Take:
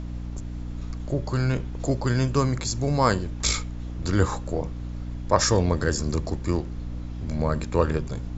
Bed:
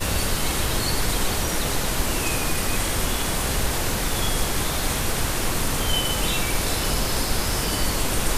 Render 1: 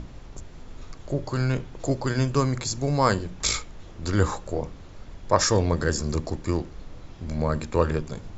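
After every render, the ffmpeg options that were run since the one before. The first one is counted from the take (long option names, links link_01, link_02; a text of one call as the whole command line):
ffmpeg -i in.wav -af "bandreject=frequency=60:width_type=h:width=6,bandreject=frequency=120:width_type=h:width=6,bandreject=frequency=180:width_type=h:width=6,bandreject=frequency=240:width_type=h:width=6,bandreject=frequency=300:width_type=h:width=6" out.wav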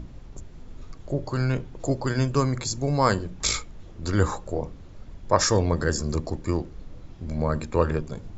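ffmpeg -i in.wav -af "afftdn=noise_reduction=6:noise_floor=-44" out.wav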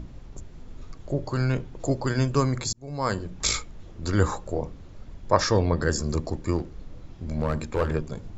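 ffmpeg -i in.wav -filter_complex "[0:a]asettb=1/sr,asplit=3[link_01][link_02][link_03];[link_01]atrim=end=5.404[link_04];[link_02]atrim=start=5.4:end=5.82,asetpts=PTS-STARTPTS,afade=type=in:duration=0.004:curve=qsin,afade=type=out:start_time=0.416:duration=0.004:curve=qsin,lowpass=frequency=5300:width=0.5412,lowpass=frequency=5300:width=1.3066[link_05];[link_03]atrim=start=5.816[link_06];[link_04][link_05]acrossfade=duration=0.004:curve1=hsin:curve2=qsin[link_07];[link_07][link_06]acrossfade=duration=0.004:curve1=qsin:curve2=hsin,asplit=3[link_08][link_09][link_10];[link_08]afade=type=out:start_time=6.57:duration=0.02[link_11];[link_09]aeval=exprs='clip(val(0),-1,0.0841)':channel_layout=same,afade=type=in:start_time=6.57:duration=0.02,afade=type=out:start_time=7.93:duration=0.02[link_12];[link_10]afade=type=in:start_time=7.93:duration=0.02[link_13];[link_11][link_12][link_13]amix=inputs=3:normalize=0,asplit=2[link_14][link_15];[link_14]atrim=end=2.73,asetpts=PTS-STARTPTS,afade=type=out:start_time=2.726:duration=0.004:curve=hsin[link_16];[link_15]atrim=start=2.73,asetpts=PTS-STARTPTS,afade=type=in:duration=0.64[link_17];[link_16][link_17]concat=n=2:v=0:a=1" out.wav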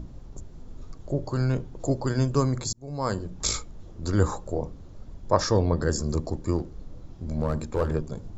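ffmpeg -i in.wav -af "equalizer=frequency=2300:width=0.95:gain=-8.5" out.wav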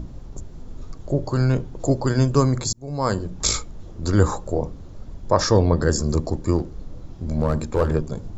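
ffmpeg -i in.wav -af "volume=5.5dB,alimiter=limit=-3dB:level=0:latency=1" out.wav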